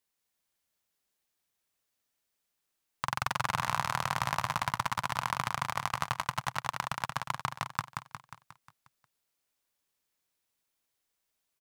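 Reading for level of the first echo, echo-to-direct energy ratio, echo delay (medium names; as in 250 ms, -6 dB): -5.0 dB, -3.5 dB, 179 ms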